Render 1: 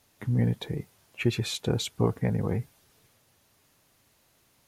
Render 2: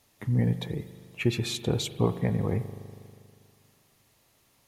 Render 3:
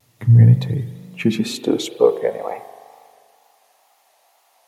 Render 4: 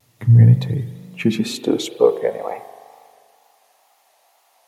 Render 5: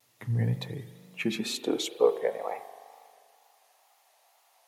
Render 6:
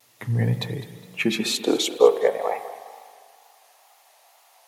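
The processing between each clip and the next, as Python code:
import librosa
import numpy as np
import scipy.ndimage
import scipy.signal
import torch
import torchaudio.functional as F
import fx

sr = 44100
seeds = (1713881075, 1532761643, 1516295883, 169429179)

y1 = fx.notch(x, sr, hz=1500.0, q=12.0)
y1 = fx.rev_spring(y1, sr, rt60_s=2.2, pass_ms=(40,), chirp_ms=75, drr_db=12.0)
y2 = fx.filter_sweep_highpass(y1, sr, from_hz=110.0, to_hz=740.0, start_s=0.71, end_s=2.59, q=5.1)
y2 = fx.hum_notches(y2, sr, base_hz=50, count=8)
y2 = fx.vibrato(y2, sr, rate_hz=2.1, depth_cents=80.0)
y2 = F.gain(torch.from_numpy(y2), 4.5).numpy()
y3 = y2
y4 = fx.highpass(y3, sr, hz=520.0, slope=6)
y4 = F.gain(torch.from_numpy(y4), -5.0).numpy()
y5 = fx.low_shelf(y4, sr, hz=220.0, db=-5.0)
y5 = fx.echo_feedback(y5, sr, ms=206, feedback_pct=34, wet_db=-16)
y5 = F.gain(torch.from_numpy(y5), 8.5).numpy()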